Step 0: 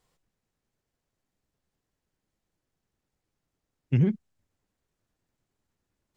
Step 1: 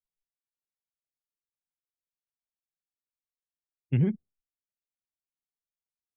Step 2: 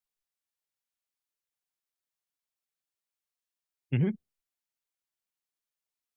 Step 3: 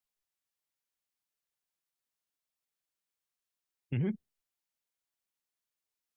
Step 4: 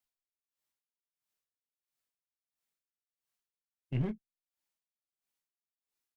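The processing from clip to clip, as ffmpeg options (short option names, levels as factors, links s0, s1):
-af "afftdn=nr=30:nf=-53,volume=0.794"
-af "lowshelf=f=470:g=-7,volume=1.5"
-af "alimiter=level_in=1.06:limit=0.0631:level=0:latency=1:release=36,volume=0.944"
-filter_complex "[0:a]asplit=2[s0][s1];[s1]adelay=23,volume=0.398[s2];[s0][s2]amix=inputs=2:normalize=0,aeval=exprs='clip(val(0),-1,0.0266)':c=same,aeval=exprs='val(0)*pow(10,-24*(0.5-0.5*cos(2*PI*1.5*n/s))/20)':c=same,volume=1.12"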